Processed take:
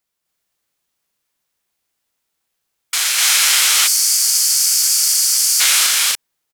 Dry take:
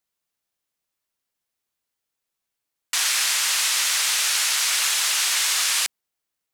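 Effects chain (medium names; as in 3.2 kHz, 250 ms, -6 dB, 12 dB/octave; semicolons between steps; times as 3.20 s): loudspeakers at several distances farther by 86 m -1 dB, 99 m -1 dB; formant shift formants +2 st; time-frequency box 3.87–5.60 s, 220–4300 Hz -16 dB; trim +4.5 dB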